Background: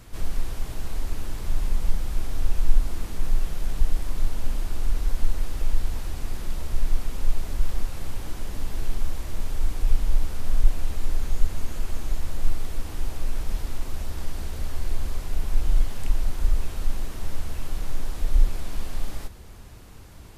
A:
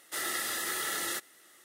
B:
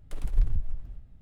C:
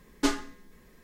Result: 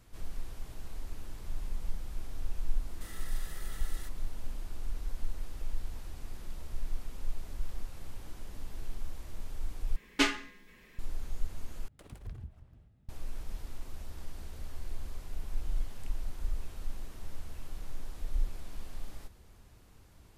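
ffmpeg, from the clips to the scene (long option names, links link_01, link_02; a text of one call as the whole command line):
ffmpeg -i bed.wav -i cue0.wav -i cue1.wav -i cue2.wav -filter_complex "[0:a]volume=-12.5dB[link_01];[1:a]alimiter=level_in=7dB:limit=-24dB:level=0:latency=1:release=39,volume=-7dB[link_02];[3:a]equalizer=frequency=2500:width=1.1:gain=13.5[link_03];[2:a]highpass=83[link_04];[link_01]asplit=3[link_05][link_06][link_07];[link_05]atrim=end=9.964[link_08];[link_03]atrim=end=1.03,asetpts=PTS-STARTPTS,volume=-4dB[link_09];[link_06]atrim=start=10.986:end=11.884[link_10];[link_04]atrim=end=1.21,asetpts=PTS-STARTPTS,volume=-6.5dB[link_11];[link_07]atrim=start=13.086[link_12];[link_02]atrim=end=1.64,asetpts=PTS-STARTPTS,volume=-10.5dB,afade=type=in:duration=0.004:curve=hsin,afade=type=out:start_time=1.636:duration=0.004:curve=hsin,adelay=2890[link_13];[link_08][link_09]acrossfade=duration=0.004:curve1=hsin:curve2=hsin[link_14];[link_14][link_10]acrossfade=duration=0.004:curve1=hsin:curve2=hsin[link_15];[link_15][link_11]acrossfade=duration=0.004:curve1=hsin:curve2=hsin[link_16];[link_16][link_12]acrossfade=duration=0.004:curve1=hsin:curve2=hsin[link_17];[link_17][link_13]amix=inputs=2:normalize=0" out.wav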